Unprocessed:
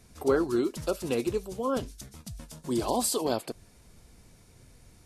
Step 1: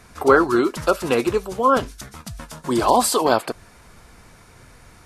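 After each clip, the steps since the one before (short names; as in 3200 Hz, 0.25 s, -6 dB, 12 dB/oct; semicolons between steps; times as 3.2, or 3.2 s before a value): bell 1300 Hz +12.5 dB 1.9 oct; gain +6 dB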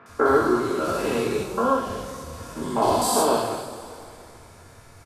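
stepped spectrum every 0.2 s; three bands offset in time mids, highs, lows 60/90 ms, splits 160/2500 Hz; two-slope reverb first 0.44 s, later 3 s, from -16 dB, DRR -1.5 dB; gain -2.5 dB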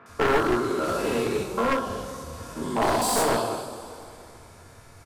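one-sided fold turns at -18 dBFS; gain -1 dB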